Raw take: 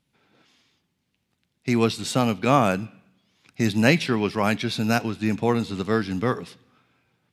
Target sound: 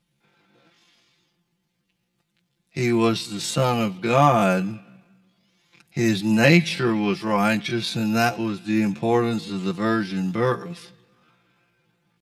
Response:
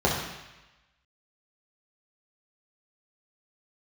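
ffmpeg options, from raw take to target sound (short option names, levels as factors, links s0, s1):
-af "aecho=1:1:5.8:0.94,atempo=0.6,volume=0.891"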